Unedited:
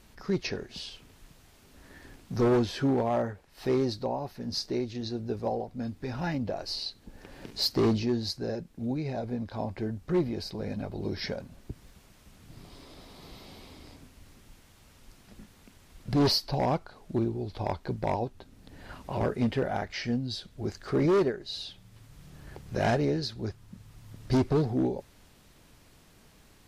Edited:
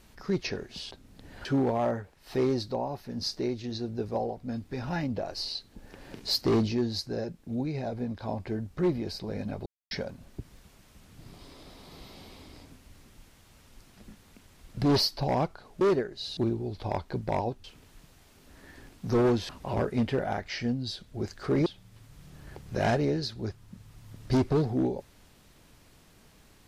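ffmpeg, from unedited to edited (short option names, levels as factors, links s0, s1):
-filter_complex "[0:a]asplit=10[s0][s1][s2][s3][s4][s5][s6][s7][s8][s9];[s0]atrim=end=0.912[s10];[s1]atrim=start=18.388:end=18.932[s11];[s2]atrim=start=2.758:end=10.97,asetpts=PTS-STARTPTS,afade=t=out:st=8.208:d=0.004:c=hsin[s12];[s3]atrim=start=10.97:end=11.22,asetpts=PTS-STARTPTS,volume=0[s13];[s4]atrim=start=11.22:end=17.122,asetpts=PTS-STARTPTS,afade=t=in:d=0.004:c=hsin[s14];[s5]atrim=start=21.098:end=21.662[s15];[s6]atrim=start=17.118:end=18.392[s16];[s7]atrim=start=0.908:end=2.762[s17];[s8]atrim=start=18.928:end=21.102[s18];[s9]atrim=start=21.658[s19];[s10][s11]acrossfade=d=0.004:c1=hsin:c2=hsin[s20];[s12][s13][s14]concat=n=3:v=0:a=1[s21];[s20][s21]acrossfade=d=0.004:c1=hsin:c2=hsin[s22];[s22][s15]acrossfade=d=0.004:c1=hsin:c2=hsin[s23];[s23][s16]acrossfade=d=0.004:c1=hsin:c2=hsin[s24];[s24][s17]acrossfade=d=0.004:c1=hsin:c2=hsin[s25];[s25][s18]acrossfade=d=0.004:c1=hsin:c2=hsin[s26];[s26][s19]acrossfade=d=0.004:c1=hsin:c2=hsin"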